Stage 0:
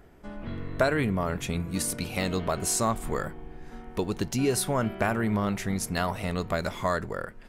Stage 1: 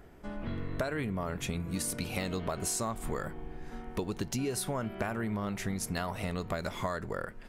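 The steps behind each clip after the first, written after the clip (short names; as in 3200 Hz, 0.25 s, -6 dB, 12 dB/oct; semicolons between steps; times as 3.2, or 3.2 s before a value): compressor, threshold -30 dBFS, peak gain reduction 11.5 dB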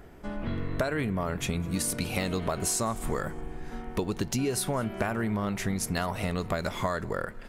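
thinning echo 0.205 s, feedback 46%, level -24 dB; gain +4.5 dB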